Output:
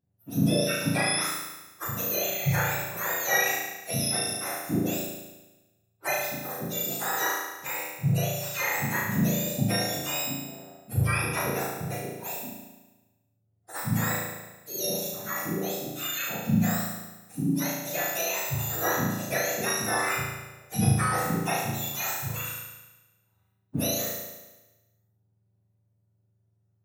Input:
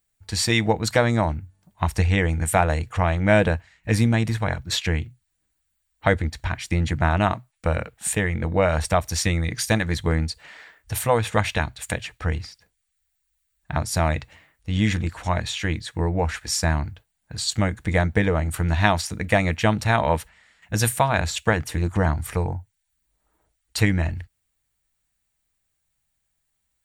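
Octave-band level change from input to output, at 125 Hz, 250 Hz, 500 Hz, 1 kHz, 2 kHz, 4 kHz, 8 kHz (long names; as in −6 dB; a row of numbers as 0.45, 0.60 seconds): −7.5, −4.5, −8.0, −6.0, −4.0, −3.5, 0.0 decibels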